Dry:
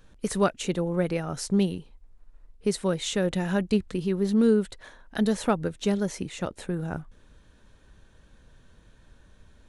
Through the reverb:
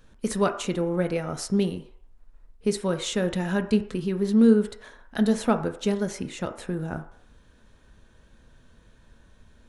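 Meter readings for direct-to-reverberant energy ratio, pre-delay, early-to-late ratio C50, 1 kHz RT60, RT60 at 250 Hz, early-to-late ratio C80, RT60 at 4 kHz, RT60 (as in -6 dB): 7.0 dB, 3 ms, 11.5 dB, 0.60 s, 0.40 s, 14.5 dB, 0.60 s, 0.60 s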